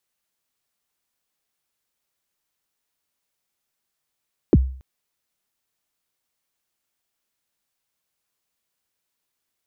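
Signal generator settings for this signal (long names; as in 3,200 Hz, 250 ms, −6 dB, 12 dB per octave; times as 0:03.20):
synth kick length 0.28 s, from 450 Hz, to 65 Hz, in 38 ms, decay 0.48 s, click off, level −7 dB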